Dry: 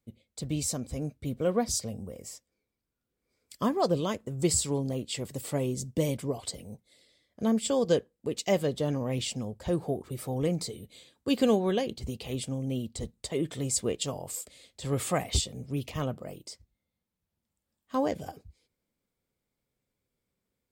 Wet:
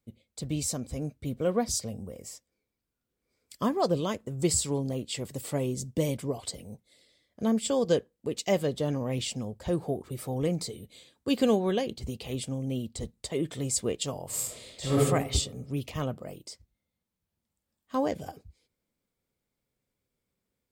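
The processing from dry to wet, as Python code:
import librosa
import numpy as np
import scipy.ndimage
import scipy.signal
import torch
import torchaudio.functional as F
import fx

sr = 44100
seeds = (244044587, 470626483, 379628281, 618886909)

y = fx.reverb_throw(x, sr, start_s=14.26, length_s=0.72, rt60_s=0.99, drr_db=-7.5)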